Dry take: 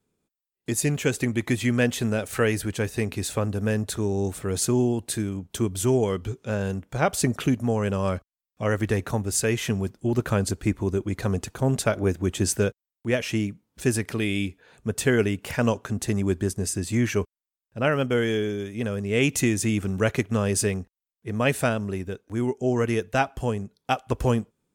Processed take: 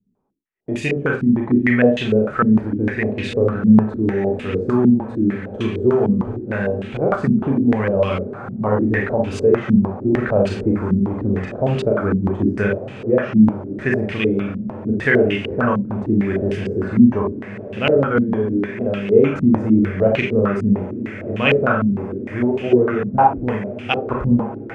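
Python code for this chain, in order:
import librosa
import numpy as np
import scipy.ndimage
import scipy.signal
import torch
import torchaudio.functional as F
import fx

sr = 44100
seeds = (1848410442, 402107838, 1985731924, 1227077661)

y = fx.echo_diffused(x, sr, ms=1535, feedback_pct=70, wet_db=-13.5)
y = fx.rev_schroeder(y, sr, rt60_s=0.34, comb_ms=29, drr_db=-0.5)
y = fx.filter_held_lowpass(y, sr, hz=6.6, low_hz=210.0, high_hz=2800.0)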